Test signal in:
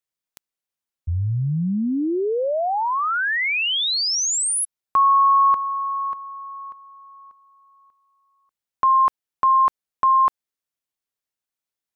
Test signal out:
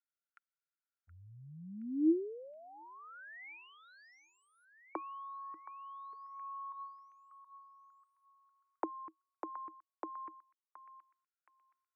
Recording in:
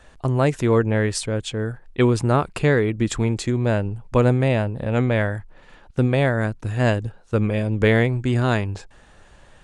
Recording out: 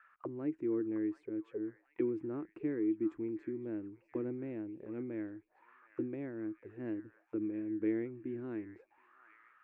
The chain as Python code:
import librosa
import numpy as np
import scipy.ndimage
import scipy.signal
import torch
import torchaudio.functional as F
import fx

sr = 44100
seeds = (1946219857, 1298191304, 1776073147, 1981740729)

y = fx.auto_wah(x, sr, base_hz=320.0, top_hz=1400.0, q=13.0, full_db=-21.0, direction='down')
y = fx.curve_eq(y, sr, hz=(340.0, 650.0, 2300.0, 3500.0), db=(0, -4, 13, -2))
y = fx.echo_stepped(y, sr, ms=722, hz=1400.0, octaves=0.7, feedback_pct=70, wet_db=-9)
y = F.gain(torch.from_numpy(y), -2.0).numpy()